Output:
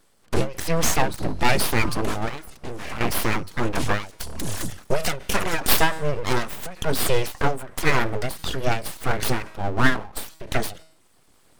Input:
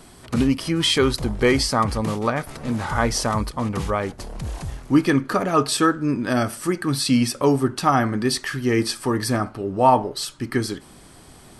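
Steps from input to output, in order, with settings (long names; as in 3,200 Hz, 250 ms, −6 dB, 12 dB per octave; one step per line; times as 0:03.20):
camcorder AGC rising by 5.8 dB per second
reverb reduction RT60 0.88 s
noise gate −37 dBFS, range −16 dB
0:02.29–0:03.01: downward compressor 12 to 1, threshold −29 dBFS, peak gain reduction 13.5 dB
0:04.01–0:05.98: high-shelf EQ 3,700 Hz +11.5 dB
tuned comb filter 160 Hz, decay 0.67 s, harmonics all, mix 40%
transient designer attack −2 dB, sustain +2 dB
full-wave rectification
every ending faded ahead of time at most 140 dB per second
level +7 dB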